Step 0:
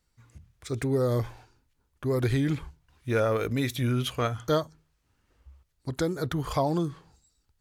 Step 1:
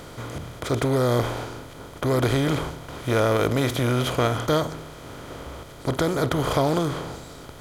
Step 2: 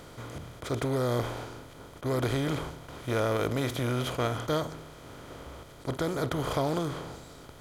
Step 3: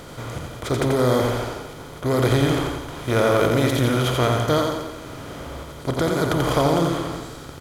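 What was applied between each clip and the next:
spectral levelling over time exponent 0.4
attacks held to a fixed rise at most 430 dB/s; trim -7 dB
feedback delay 87 ms, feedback 54%, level -4 dB; trim +8 dB

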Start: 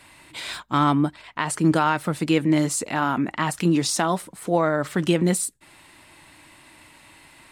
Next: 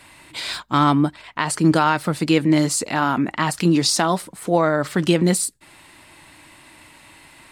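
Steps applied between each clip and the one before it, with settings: dynamic bell 4.6 kHz, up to +7 dB, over -51 dBFS, Q 3.4; trim +3 dB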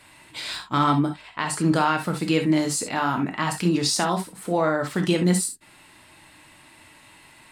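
gated-style reverb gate 90 ms flat, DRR 4 dB; trim -5 dB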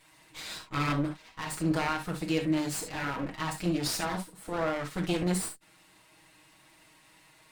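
comb filter that takes the minimum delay 6.3 ms; trim -7 dB

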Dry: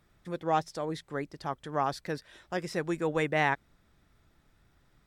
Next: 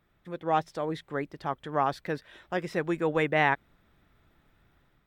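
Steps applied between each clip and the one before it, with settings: high-order bell 7.3 kHz -9 dB; level rider gain up to 5 dB; bass shelf 140 Hz -3.5 dB; trim -2 dB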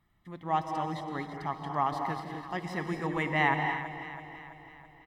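comb 1 ms, depth 63%; on a send: echo whose repeats swap between lows and highs 165 ms, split 820 Hz, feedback 74%, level -9 dB; on the sum: gated-style reverb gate 280 ms rising, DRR 5.5 dB; trim -4.5 dB

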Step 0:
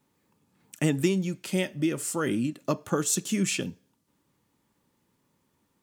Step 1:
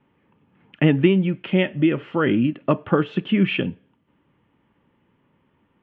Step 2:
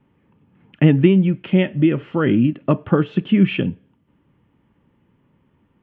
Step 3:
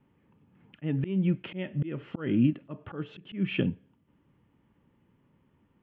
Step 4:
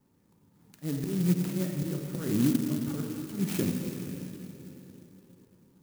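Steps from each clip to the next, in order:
Chebyshev low-pass 3.1 kHz, order 5; trim +8.5 dB
bass shelf 280 Hz +9 dB; trim -1.5 dB
slow attack 282 ms; trim -6 dB
plate-style reverb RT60 4 s, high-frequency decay 0.65×, DRR 0.5 dB; sampling jitter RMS 0.1 ms; trim -2.5 dB

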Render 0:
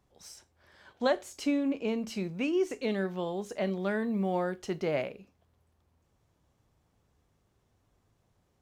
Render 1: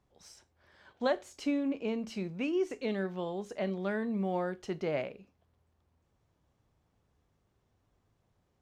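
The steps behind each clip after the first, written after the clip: treble shelf 8.9 kHz -11 dB; trim -2.5 dB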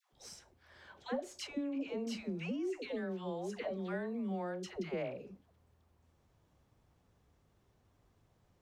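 compression 10:1, threshold -38 dBFS, peak gain reduction 14 dB; phase dispersion lows, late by 124 ms, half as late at 730 Hz; trim +3 dB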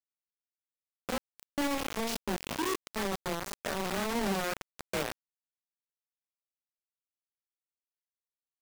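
spectrogram pixelated in time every 100 ms; bit crusher 6-bit; trim +5.5 dB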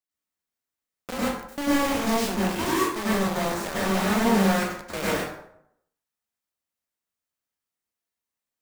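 plate-style reverb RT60 0.73 s, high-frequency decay 0.6×, pre-delay 85 ms, DRR -8 dB

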